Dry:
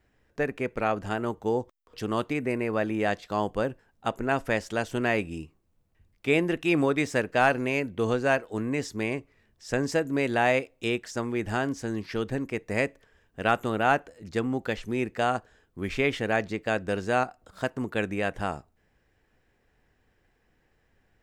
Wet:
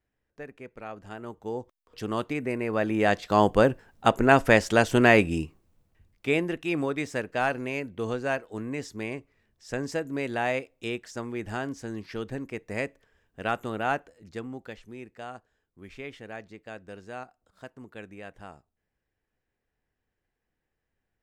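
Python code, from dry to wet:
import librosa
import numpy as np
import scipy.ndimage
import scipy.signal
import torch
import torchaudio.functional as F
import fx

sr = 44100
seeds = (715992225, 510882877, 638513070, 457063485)

y = fx.gain(x, sr, db=fx.line((0.85, -13.5), (2.05, -1.5), (2.59, -1.5), (3.46, 8.0), (5.39, 8.0), (6.62, -4.5), (13.93, -4.5), (15.05, -14.5)))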